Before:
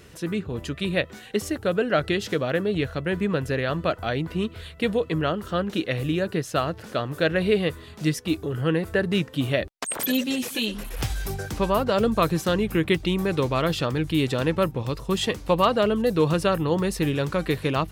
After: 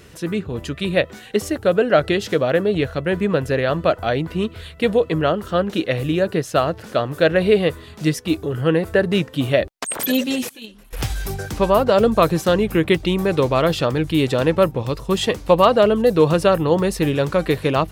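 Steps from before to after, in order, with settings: 10.49–10.93 s: gate -22 dBFS, range -17 dB; dynamic bell 600 Hz, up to +5 dB, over -32 dBFS, Q 1.1; trim +3.5 dB

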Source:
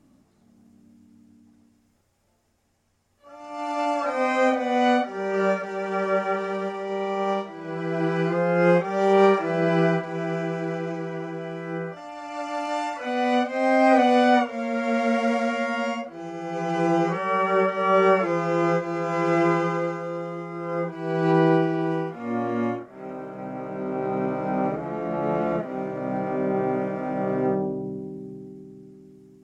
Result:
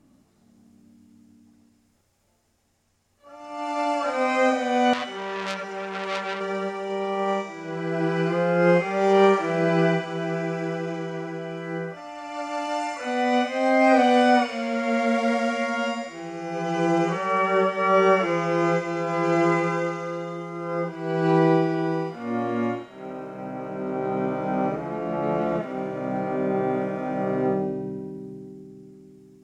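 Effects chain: feedback echo behind a high-pass 70 ms, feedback 76%, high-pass 2.6 kHz, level -3.5 dB; 4.93–6.41 s: transformer saturation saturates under 3.7 kHz

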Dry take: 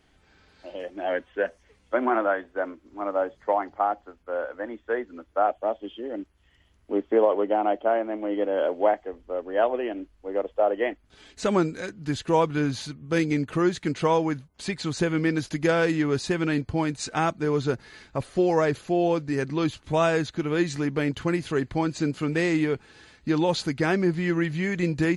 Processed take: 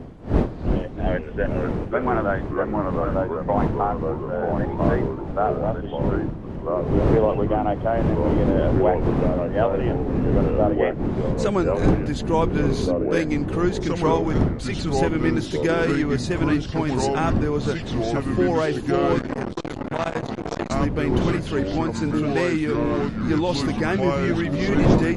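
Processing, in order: wind noise 300 Hz -28 dBFS; ever faster or slower copies 278 ms, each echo -3 st, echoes 3; 19.19–20.71 s: transformer saturation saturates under 930 Hz

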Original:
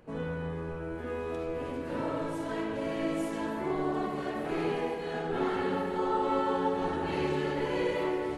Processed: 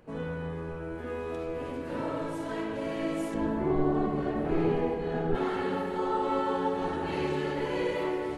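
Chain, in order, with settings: 3.34–5.35 s: tilt EQ -3 dB/octave

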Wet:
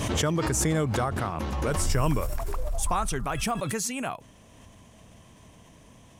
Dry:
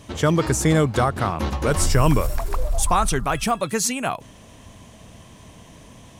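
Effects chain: peaking EQ 4.1 kHz -3 dB 0.45 oct; swell ahead of each attack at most 26 dB/s; trim -8 dB

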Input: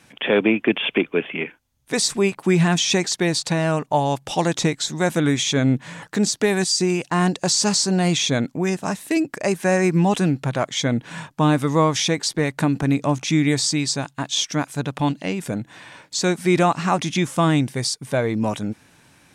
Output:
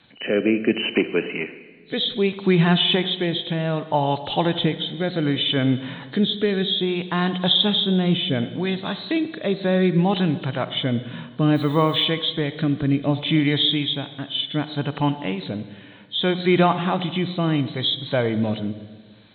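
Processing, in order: knee-point frequency compression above 2.9 kHz 4:1; rotary cabinet horn 0.65 Hz; on a send at -12 dB: reverberation RT60 1.5 s, pre-delay 42 ms; 11.54–12.04 s: on the sum: added noise violet -54 dBFS

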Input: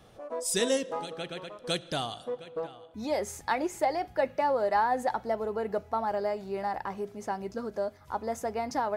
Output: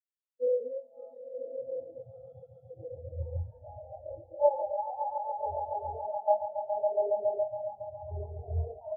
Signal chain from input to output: spectrogram pixelated in time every 400 ms; gate with hold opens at -33 dBFS; distance through air 200 m; echo with a slow build-up 139 ms, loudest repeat 5, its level -5 dB; LFO notch square 0.74 Hz 360–1900 Hz; doubling 24 ms -6 dB; in parallel at 0 dB: gain riding 0.5 s; on the sum: resonant low shelf 130 Hz +9.5 dB, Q 3; spectral contrast expander 4:1

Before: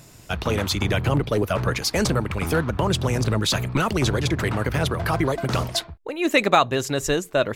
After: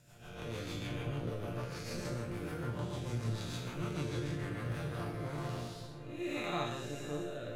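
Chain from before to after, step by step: spectral blur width 263 ms; rotary cabinet horn 6.7 Hz, later 0.8 Hz, at 4.50 s; chord resonator A#2 major, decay 0.36 s; filtered feedback delay 558 ms, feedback 65%, low-pass 1.5 kHz, level -12 dB; trim +4 dB

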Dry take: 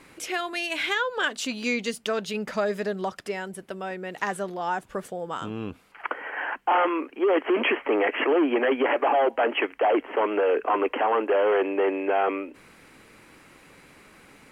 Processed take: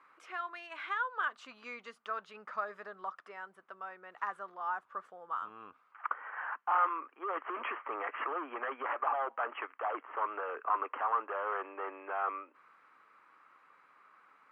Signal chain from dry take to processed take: band-pass filter 1.2 kHz, Q 4.8

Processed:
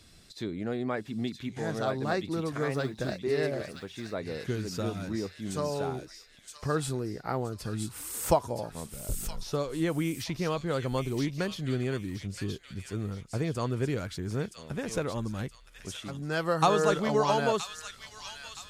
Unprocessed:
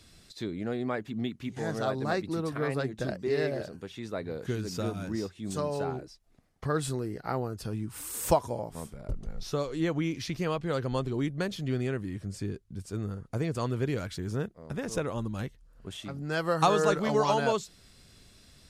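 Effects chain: 2.70–3.17 s: companded quantiser 8-bit; on a send: feedback echo behind a high-pass 971 ms, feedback 39%, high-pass 2.4 kHz, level -3.5 dB

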